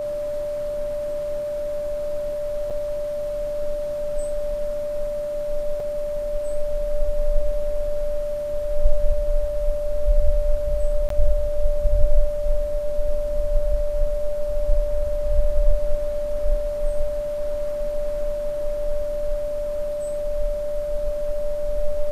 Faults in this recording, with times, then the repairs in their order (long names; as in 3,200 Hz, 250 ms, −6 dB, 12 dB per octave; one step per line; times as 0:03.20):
whistle 590 Hz −24 dBFS
0:02.70–0:02.71: drop-out 6.3 ms
0:05.80: drop-out 3 ms
0:11.09–0:11.10: drop-out 13 ms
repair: notch filter 590 Hz, Q 30
repair the gap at 0:02.70, 6.3 ms
repair the gap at 0:05.80, 3 ms
repair the gap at 0:11.09, 13 ms